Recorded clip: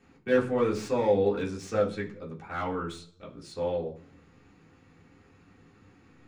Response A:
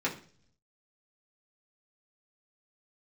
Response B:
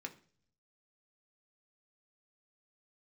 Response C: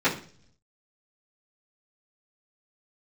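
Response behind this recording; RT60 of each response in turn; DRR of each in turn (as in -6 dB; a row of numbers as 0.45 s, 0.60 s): A; 0.45 s, 0.50 s, 0.45 s; -5.5 dB, 3.5 dB, -15.5 dB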